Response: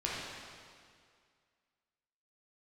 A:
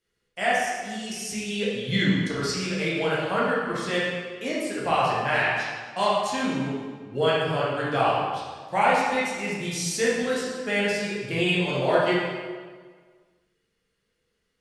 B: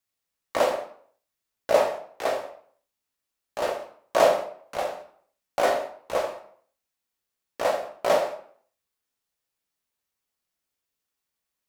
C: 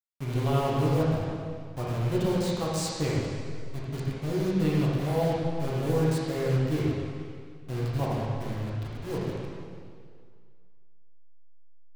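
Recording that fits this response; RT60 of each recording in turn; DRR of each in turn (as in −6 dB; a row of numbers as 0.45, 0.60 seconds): C; 1.6, 0.55, 2.1 seconds; −7.5, 1.0, −6.5 decibels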